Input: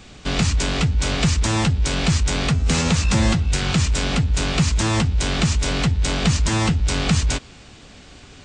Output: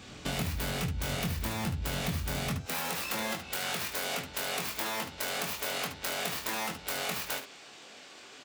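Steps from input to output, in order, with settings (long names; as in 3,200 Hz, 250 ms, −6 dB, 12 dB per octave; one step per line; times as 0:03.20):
stylus tracing distortion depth 0.29 ms
high-pass filter 81 Hz 12 dB per octave, from 0:02.58 430 Hz
downward compressor, threshold −27 dBFS, peak gain reduction 12.5 dB
ambience of single reflections 23 ms −5 dB, 74 ms −9 dB
level −4.5 dB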